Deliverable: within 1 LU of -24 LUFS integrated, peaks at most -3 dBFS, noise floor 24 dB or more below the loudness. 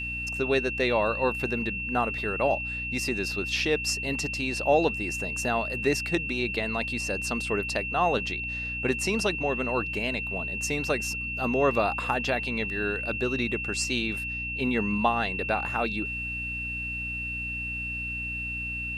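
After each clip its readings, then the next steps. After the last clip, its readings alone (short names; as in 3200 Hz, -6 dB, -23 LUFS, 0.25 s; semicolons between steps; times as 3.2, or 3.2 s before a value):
hum 60 Hz; harmonics up to 300 Hz; hum level -37 dBFS; steady tone 2700 Hz; tone level -31 dBFS; loudness -27.5 LUFS; peak -10.0 dBFS; loudness target -24.0 LUFS
-> notches 60/120/180/240/300 Hz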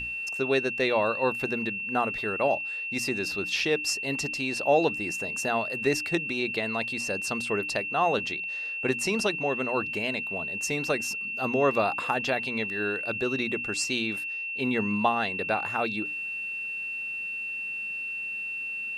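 hum none; steady tone 2700 Hz; tone level -31 dBFS
-> notch 2700 Hz, Q 30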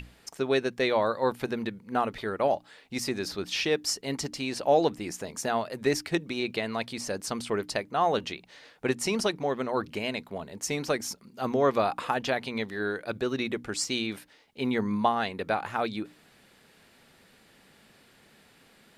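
steady tone none; loudness -29.5 LUFS; peak -10.0 dBFS; loudness target -24.0 LUFS
-> gain +5.5 dB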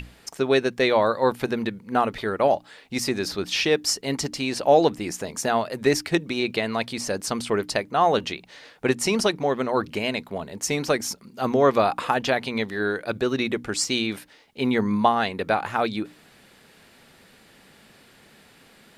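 loudness -24.0 LUFS; peak -4.5 dBFS; noise floor -54 dBFS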